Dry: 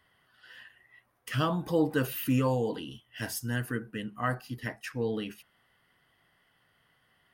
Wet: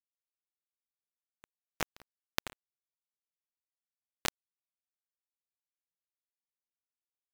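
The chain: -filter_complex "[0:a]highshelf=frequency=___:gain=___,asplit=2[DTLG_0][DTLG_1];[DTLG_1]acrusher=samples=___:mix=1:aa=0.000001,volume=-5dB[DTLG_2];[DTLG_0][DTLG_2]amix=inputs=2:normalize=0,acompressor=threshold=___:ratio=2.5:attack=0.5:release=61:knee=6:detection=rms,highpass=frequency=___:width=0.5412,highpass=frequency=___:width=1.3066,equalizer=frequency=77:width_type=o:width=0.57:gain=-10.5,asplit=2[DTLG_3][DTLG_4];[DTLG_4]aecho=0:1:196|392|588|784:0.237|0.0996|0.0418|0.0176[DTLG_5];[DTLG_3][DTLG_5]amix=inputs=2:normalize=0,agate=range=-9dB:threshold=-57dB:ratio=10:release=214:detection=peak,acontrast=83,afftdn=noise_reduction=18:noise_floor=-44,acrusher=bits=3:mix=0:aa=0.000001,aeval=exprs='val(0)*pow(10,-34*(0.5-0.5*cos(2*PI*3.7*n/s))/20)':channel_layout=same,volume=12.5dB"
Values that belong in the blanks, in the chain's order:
11000, -6, 39, -43dB, 51, 51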